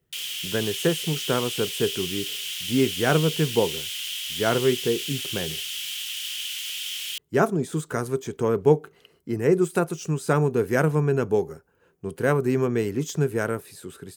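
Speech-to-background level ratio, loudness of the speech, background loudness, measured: 4.0 dB, -25.0 LUFS, -29.0 LUFS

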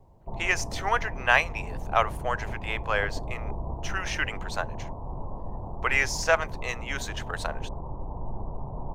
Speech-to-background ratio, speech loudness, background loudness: 10.0 dB, -28.0 LUFS, -38.0 LUFS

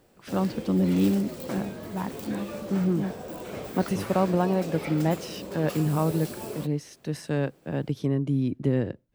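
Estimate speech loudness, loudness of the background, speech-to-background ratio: -28.0 LUFS, -37.0 LUFS, 9.0 dB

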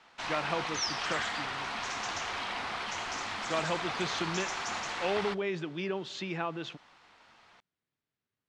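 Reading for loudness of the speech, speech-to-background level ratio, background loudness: -36.0 LUFS, -1.5 dB, -34.5 LUFS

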